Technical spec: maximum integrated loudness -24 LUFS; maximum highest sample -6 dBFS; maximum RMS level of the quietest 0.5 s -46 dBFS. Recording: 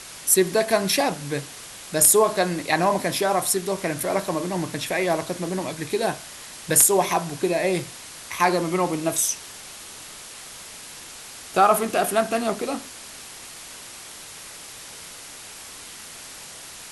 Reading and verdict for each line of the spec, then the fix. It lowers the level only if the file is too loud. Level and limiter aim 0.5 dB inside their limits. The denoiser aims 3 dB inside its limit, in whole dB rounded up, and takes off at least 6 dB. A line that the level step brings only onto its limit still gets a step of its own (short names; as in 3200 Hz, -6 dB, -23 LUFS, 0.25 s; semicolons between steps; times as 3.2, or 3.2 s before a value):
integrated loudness -22.0 LUFS: fail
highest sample -3.5 dBFS: fail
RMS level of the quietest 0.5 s -41 dBFS: fail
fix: denoiser 6 dB, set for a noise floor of -41 dBFS; gain -2.5 dB; limiter -6.5 dBFS